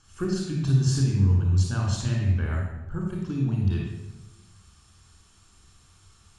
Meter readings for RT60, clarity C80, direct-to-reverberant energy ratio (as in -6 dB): 1.1 s, 4.0 dB, -1.5 dB